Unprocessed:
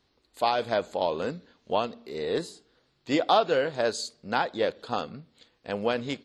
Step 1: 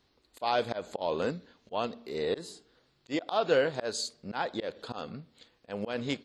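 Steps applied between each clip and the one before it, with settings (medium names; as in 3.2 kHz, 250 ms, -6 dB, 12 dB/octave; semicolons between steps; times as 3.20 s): slow attack 168 ms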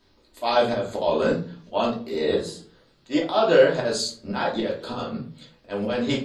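simulated room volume 210 m³, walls furnished, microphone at 2.8 m; trim +2.5 dB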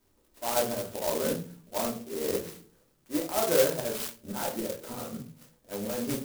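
sampling jitter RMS 0.12 ms; trim -7.5 dB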